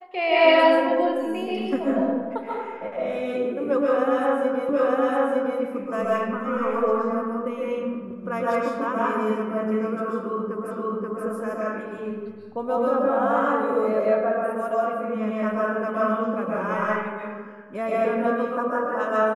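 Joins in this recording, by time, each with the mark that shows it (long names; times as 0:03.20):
0:04.69: the same again, the last 0.91 s
0:10.71: the same again, the last 0.53 s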